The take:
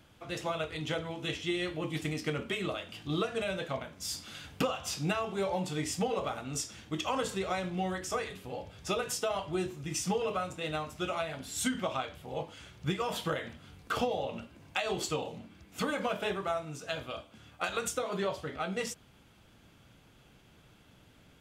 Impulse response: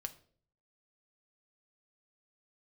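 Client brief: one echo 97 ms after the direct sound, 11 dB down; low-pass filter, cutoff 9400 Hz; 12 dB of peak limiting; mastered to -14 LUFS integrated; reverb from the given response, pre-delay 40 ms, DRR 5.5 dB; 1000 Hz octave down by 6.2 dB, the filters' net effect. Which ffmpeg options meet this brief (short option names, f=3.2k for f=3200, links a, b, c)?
-filter_complex "[0:a]lowpass=9.4k,equalizer=f=1k:t=o:g=-9,alimiter=level_in=7dB:limit=-24dB:level=0:latency=1,volume=-7dB,aecho=1:1:97:0.282,asplit=2[a][b];[1:a]atrim=start_sample=2205,adelay=40[c];[b][c]afir=irnorm=-1:irlink=0,volume=-3dB[d];[a][d]amix=inputs=2:normalize=0,volume=25dB"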